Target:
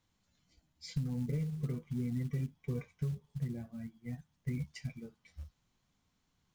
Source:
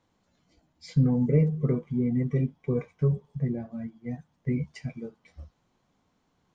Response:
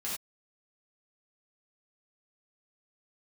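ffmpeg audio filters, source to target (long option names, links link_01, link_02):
-af "equalizer=frequency=520:width=0.37:gain=-13,acompressor=threshold=-31dB:ratio=12,acrusher=bits=7:mode=log:mix=0:aa=0.000001"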